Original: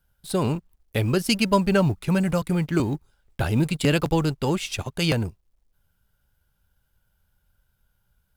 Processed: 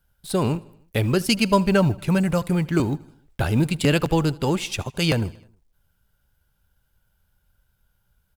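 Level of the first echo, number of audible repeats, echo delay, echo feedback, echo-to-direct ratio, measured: −23.0 dB, 3, 78 ms, 59%, −21.0 dB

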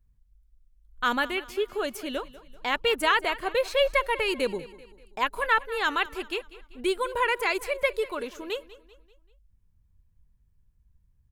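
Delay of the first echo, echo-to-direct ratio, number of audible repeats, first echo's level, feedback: 194 ms, −17.0 dB, 3, −18.0 dB, 46%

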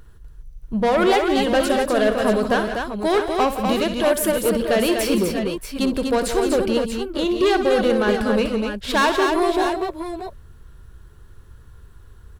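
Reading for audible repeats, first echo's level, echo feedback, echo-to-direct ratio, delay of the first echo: 4, −11.5 dB, repeats not evenly spaced, −2.0 dB, 61 ms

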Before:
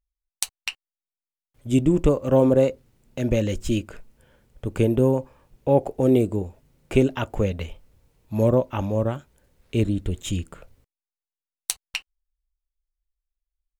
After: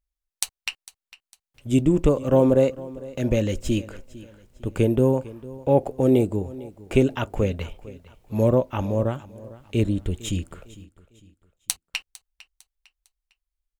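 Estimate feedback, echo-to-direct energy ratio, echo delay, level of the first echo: 37%, −18.5 dB, 453 ms, −19.0 dB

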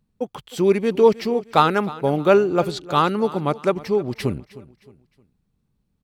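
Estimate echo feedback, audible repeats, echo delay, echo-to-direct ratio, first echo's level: 38%, 2, 310 ms, −18.0 dB, −18.5 dB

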